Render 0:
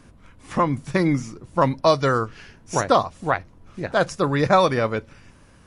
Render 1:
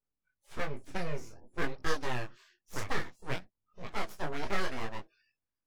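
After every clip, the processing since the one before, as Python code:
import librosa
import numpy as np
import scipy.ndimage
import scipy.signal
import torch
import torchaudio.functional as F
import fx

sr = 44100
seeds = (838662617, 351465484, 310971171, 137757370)

y = np.abs(x)
y = fx.noise_reduce_blind(y, sr, reduce_db=30)
y = fx.detune_double(y, sr, cents=19)
y = F.gain(torch.from_numpy(y), -9.0).numpy()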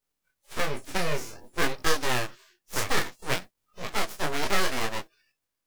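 y = fx.envelope_flatten(x, sr, power=0.6)
y = F.gain(torch.from_numpy(y), 4.5).numpy()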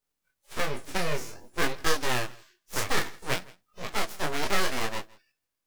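y = x + 10.0 ** (-23.5 / 20.0) * np.pad(x, (int(164 * sr / 1000.0), 0))[:len(x)]
y = F.gain(torch.from_numpy(y), -1.0).numpy()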